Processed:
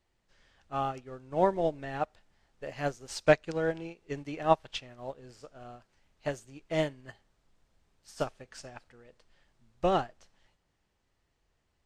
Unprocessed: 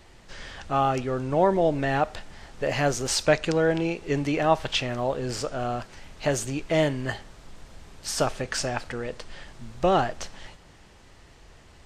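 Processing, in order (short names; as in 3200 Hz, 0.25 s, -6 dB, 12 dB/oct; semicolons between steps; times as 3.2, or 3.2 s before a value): upward expander 2.5:1, over -32 dBFS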